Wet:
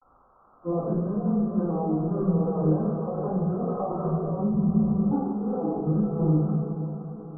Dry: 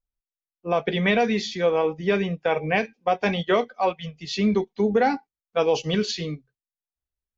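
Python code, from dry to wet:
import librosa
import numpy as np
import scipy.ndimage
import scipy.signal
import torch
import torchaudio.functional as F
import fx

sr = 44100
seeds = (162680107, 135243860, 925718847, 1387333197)

y = x + 0.5 * 10.0 ** (-22.0 / 20.0) * np.diff(np.sign(x), prepend=np.sign(x[:1]))
y = fx.hum_notches(y, sr, base_hz=50, count=4)
y = fx.echo_diffused(y, sr, ms=527, feedback_pct=43, wet_db=-14)
y = fx.over_compress(y, sr, threshold_db=-27.0, ratio=-1.0)
y = fx.peak_eq(y, sr, hz=110.0, db=6.0, octaves=0.78)
y = fx.quant_dither(y, sr, seeds[0], bits=8, dither='none')
y = fx.formant_shift(y, sr, semitones=-3)
y = scipy.signal.sosfilt(scipy.signal.butter(16, 1300.0, 'lowpass', fs=sr, output='sos'), y)
y = fx.room_shoebox(y, sr, seeds[1], volume_m3=350.0, walls='mixed', distance_m=2.1)
y = fx.spec_freeze(y, sr, seeds[2], at_s=4.55, hold_s=0.58)
y = y * librosa.db_to_amplitude(-4.5)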